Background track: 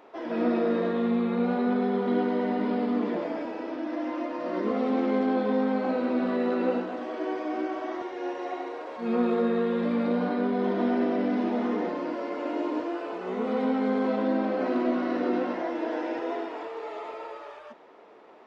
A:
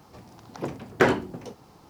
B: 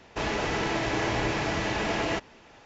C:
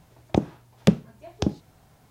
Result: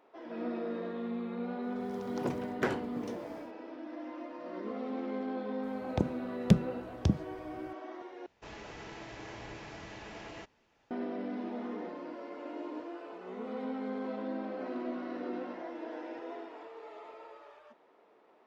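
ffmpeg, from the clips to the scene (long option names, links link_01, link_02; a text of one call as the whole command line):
ffmpeg -i bed.wav -i cue0.wav -i cue1.wav -i cue2.wav -filter_complex "[0:a]volume=-11.5dB[link_01];[1:a]dynaudnorm=framelen=160:gausssize=3:maxgain=14dB[link_02];[3:a]asubboost=boost=8:cutoff=200[link_03];[link_01]asplit=2[link_04][link_05];[link_04]atrim=end=8.264[link_06];[2:a]atrim=end=2.65,asetpts=PTS-STARTPTS,volume=-18dB[link_07];[link_05]atrim=start=10.906[link_08];[link_02]atrim=end=1.89,asetpts=PTS-STARTPTS,volume=-17dB,afade=type=in:duration=0.004:curve=hsin,afade=type=out:start_time=1.886:duration=0.004:curve=hsin,adelay=1620[link_09];[link_03]atrim=end=2.1,asetpts=PTS-STARTPTS,volume=-9dB,afade=type=in:duration=0.004:curve=hsin,afade=type=out:start_time=2.096:duration=0.004:curve=hsin,adelay=5630[link_10];[link_06][link_07]acrossfade=duration=0.004:curve1=hsin:curve2=hsin[link_11];[link_11][link_08]acrossfade=duration=0.004:curve1=hsin:curve2=hsin[link_12];[link_12][link_09][link_10]amix=inputs=3:normalize=0" out.wav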